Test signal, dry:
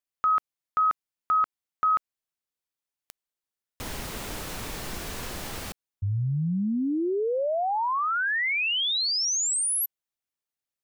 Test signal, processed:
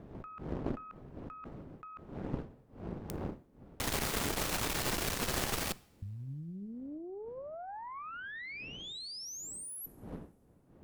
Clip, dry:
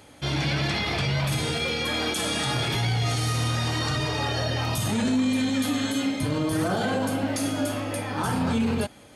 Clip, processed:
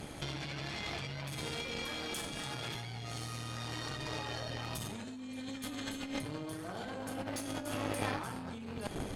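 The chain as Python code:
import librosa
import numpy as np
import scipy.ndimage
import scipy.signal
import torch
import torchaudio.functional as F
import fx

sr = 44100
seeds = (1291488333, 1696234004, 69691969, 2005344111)

y = fx.dmg_wind(x, sr, seeds[0], corner_hz=280.0, level_db=-41.0)
y = fx.low_shelf(y, sr, hz=150.0, db=-3.0)
y = fx.over_compress(y, sr, threshold_db=-35.0, ratio=-1.0)
y = fx.rev_double_slope(y, sr, seeds[1], early_s=0.53, late_s=2.6, knee_db=-20, drr_db=17.0)
y = fx.cheby_harmonics(y, sr, harmonics=(3, 4, 7, 8), levels_db=(-19, -22, -32, -25), full_scale_db=-9.0)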